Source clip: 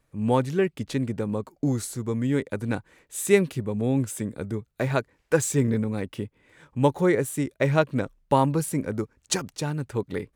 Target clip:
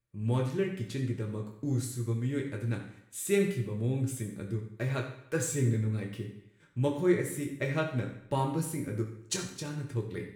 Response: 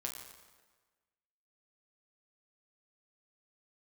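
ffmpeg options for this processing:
-filter_complex "[0:a]agate=range=-9dB:threshold=-52dB:ratio=16:detection=peak,equalizer=frequency=800:width_type=o:width=1.1:gain=-8.5[link_01];[1:a]atrim=start_sample=2205,asetrate=79380,aresample=44100[link_02];[link_01][link_02]afir=irnorm=-1:irlink=0"

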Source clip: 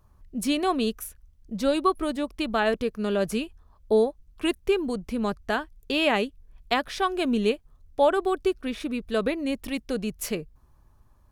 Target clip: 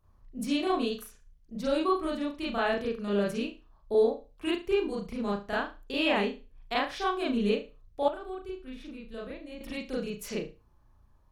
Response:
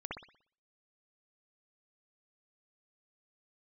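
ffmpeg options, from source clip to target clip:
-filter_complex "[1:a]atrim=start_sample=2205,asetrate=74970,aresample=44100[link_01];[0:a][link_01]afir=irnorm=-1:irlink=0,asettb=1/sr,asplit=3[link_02][link_03][link_04];[link_02]atrim=end=8.084[link_05];[link_03]atrim=start=8.08:end=9.61,asetpts=PTS-STARTPTS,afade=type=in:duration=0.004:curve=qsin,afade=type=out:start_time=1.526:duration=0.004:curve=qsin,acrossover=split=120[link_06][link_07];[link_07]acompressor=threshold=-58dB:ratio=1.5[link_08];[link_06][link_08]amix=inputs=2:normalize=0[link_09];[link_04]atrim=start=9.606[link_10];[link_05][link_09]acrossfade=duration=0.004:curve1=hsin:curve2=qsin[link_11];[link_11][link_10]acrossfade=duration=0.004:curve1=qsin:curve2=hsin"

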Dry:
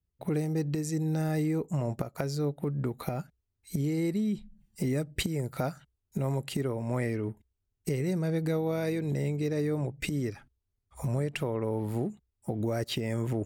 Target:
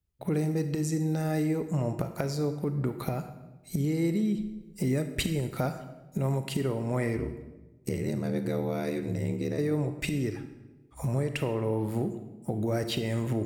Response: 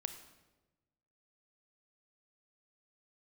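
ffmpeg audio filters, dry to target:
-filter_complex "[0:a]asplit=3[link_01][link_02][link_03];[link_01]afade=type=out:start_time=7.16:duration=0.02[link_04];[link_02]aeval=exprs='val(0)*sin(2*PI*38*n/s)':channel_layout=same,afade=type=in:start_time=7.16:duration=0.02,afade=type=out:start_time=9.57:duration=0.02[link_05];[link_03]afade=type=in:start_time=9.57:duration=0.02[link_06];[link_04][link_05][link_06]amix=inputs=3:normalize=0[link_07];[1:a]atrim=start_sample=2205[link_08];[link_07][link_08]afir=irnorm=-1:irlink=0,volume=3dB"

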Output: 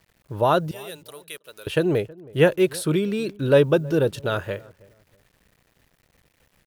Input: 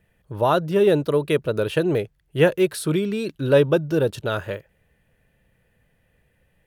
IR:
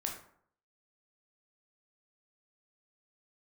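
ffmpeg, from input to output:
-filter_complex "[0:a]asettb=1/sr,asplit=3[link_01][link_02][link_03];[link_01]atrim=end=0.714[link_04];[link_02]atrim=start=0.71:end=1.67,asetpts=PTS-STARTPTS,afade=type=in:duration=0.004:curve=qsin,afade=type=out:start_time=0.956:duration=0.004:curve=qsin,aderivative[link_05];[link_03]atrim=start=1.666[link_06];[link_04][link_05]acrossfade=duration=0.004:curve1=hsin:curve2=qsin[link_07];[link_07][link_06]acrossfade=duration=0.004:curve1=qsin:curve2=hsin,acrusher=bits=9:mix=0:aa=0.000001,asplit=2[link_08][link_09];[link_09]adelay=321,lowpass=frequency=860:poles=1,volume=-21.5dB,asplit=2[link_10][link_11];[link_11]adelay=321,lowpass=frequency=860:poles=1,volume=0.33[link_12];[link_10][link_12]amix=inputs=2:normalize=0[link_13];[link_08][link_13]amix=inputs=2:normalize=0"

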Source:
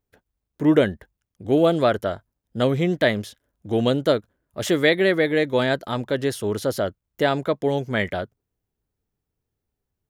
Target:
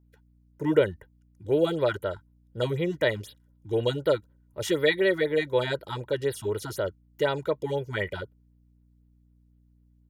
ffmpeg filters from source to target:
ffmpeg -i in.wav -af "aecho=1:1:2.1:0.72,aeval=exprs='val(0)+0.00224*(sin(2*PI*60*n/s)+sin(2*PI*2*60*n/s)/2+sin(2*PI*3*60*n/s)/3+sin(2*PI*4*60*n/s)/4+sin(2*PI*5*60*n/s)/5)':channel_layout=same,afftfilt=real='re*(1-between(b*sr/1024,450*pow(7500/450,0.5+0.5*sin(2*PI*4*pts/sr))/1.41,450*pow(7500/450,0.5+0.5*sin(2*PI*4*pts/sr))*1.41))':imag='im*(1-between(b*sr/1024,450*pow(7500/450,0.5+0.5*sin(2*PI*4*pts/sr))/1.41,450*pow(7500/450,0.5+0.5*sin(2*PI*4*pts/sr))*1.41))':win_size=1024:overlap=0.75,volume=-6.5dB" out.wav

